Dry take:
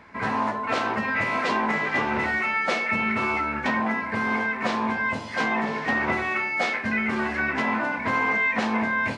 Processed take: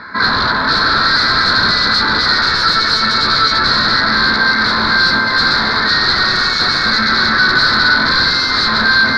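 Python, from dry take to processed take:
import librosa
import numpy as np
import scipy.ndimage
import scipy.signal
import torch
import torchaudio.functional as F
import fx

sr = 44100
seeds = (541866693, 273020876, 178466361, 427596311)

p1 = fx.rider(x, sr, range_db=10, speed_s=0.5)
p2 = x + F.gain(torch.from_numpy(p1), 2.0).numpy()
p3 = fx.low_shelf(p2, sr, hz=260.0, db=-10.5)
p4 = fx.rev_freeverb(p3, sr, rt60_s=2.5, hf_ratio=0.9, predelay_ms=90, drr_db=1.5)
p5 = fx.fold_sine(p4, sr, drive_db=13, ceiling_db=-5.0)
p6 = fx.curve_eq(p5, sr, hz=(210.0, 790.0, 1500.0, 2900.0, 4200.0, 6200.0, 9800.0), db=(0, -9, 8, -22, 12, -18, -25))
y = F.gain(torch.from_numpy(p6), -6.0).numpy()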